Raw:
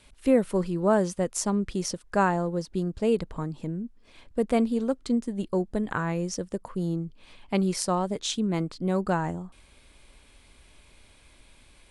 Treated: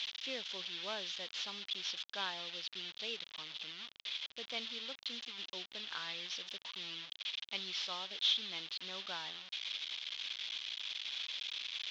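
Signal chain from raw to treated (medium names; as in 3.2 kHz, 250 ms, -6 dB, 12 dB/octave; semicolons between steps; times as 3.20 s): one-bit delta coder 32 kbps, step -30.5 dBFS; band-pass filter 3.4 kHz, Q 4.5; trim +5.5 dB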